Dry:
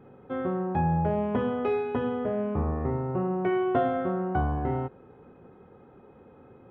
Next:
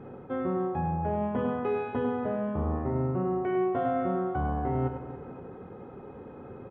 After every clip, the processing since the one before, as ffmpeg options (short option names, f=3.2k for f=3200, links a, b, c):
-af "lowpass=f=2.5k:p=1,areverse,acompressor=threshold=-35dB:ratio=6,areverse,aecho=1:1:100|280|522:0.398|0.224|0.126,volume=7.5dB"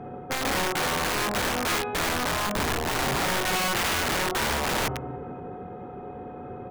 -af "aeval=exprs='(mod(20*val(0)+1,2)-1)/20':c=same,bandreject=f=52.35:t=h:w=4,bandreject=f=104.7:t=h:w=4,bandreject=f=157.05:t=h:w=4,bandreject=f=209.4:t=h:w=4,bandreject=f=261.75:t=h:w=4,bandreject=f=314.1:t=h:w=4,bandreject=f=366.45:t=h:w=4,bandreject=f=418.8:t=h:w=4,bandreject=f=471.15:t=h:w=4,bandreject=f=523.5:t=h:w=4,bandreject=f=575.85:t=h:w=4,bandreject=f=628.2:t=h:w=4,bandreject=f=680.55:t=h:w=4,bandreject=f=732.9:t=h:w=4,bandreject=f=785.25:t=h:w=4,bandreject=f=837.6:t=h:w=4,bandreject=f=889.95:t=h:w=4,bandreject=f=942.3:t=h:w=4,bandreject=f=994.65:t=h:w=4,bandreject=f=1.047k:t=h:w=4,bandreject=f=1.09935k:t=h:w=4,bandreject=f=1.1517k:t=h:w=4,bandreject=f=1.20405k:t=h:w=4,bandreject=f=1.2564k:t=h:w=4,aeval=exprs='val(0)+0.00447*sin(2*PI*730*n/s)':c=same,volume=5dB"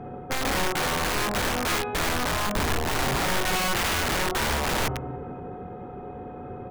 -af "lowshelf=f=71:g=8.5"